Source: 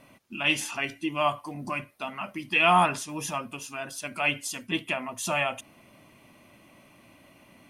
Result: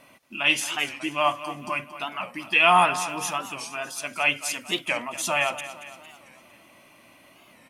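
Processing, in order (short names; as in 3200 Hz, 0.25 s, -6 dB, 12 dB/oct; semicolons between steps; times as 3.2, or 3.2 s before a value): low shelf 320 Hz -10.5 dB; on a send: feedback echo 0.228 s, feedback 51%, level -13.5 dB; on the sum: record warp 45 rpm, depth 160 cents; gain +4 dB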